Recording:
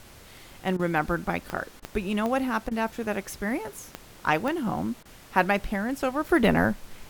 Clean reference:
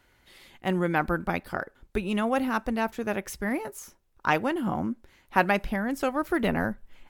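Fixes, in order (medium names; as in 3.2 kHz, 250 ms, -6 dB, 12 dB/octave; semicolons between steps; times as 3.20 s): de-click; interpolate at 0.77/1.80/2.69/5.03 s, 22 ms; noise print and reduce 12 dB; trim 0 dB, from 6.29 s -5 dB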